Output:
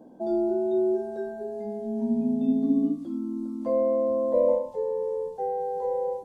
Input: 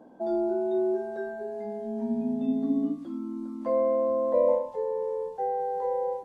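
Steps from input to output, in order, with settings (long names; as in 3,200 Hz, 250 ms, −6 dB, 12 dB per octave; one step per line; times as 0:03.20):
parametric band 1,600 Hz −11 dB 2.3 octaves
level +4.5 dB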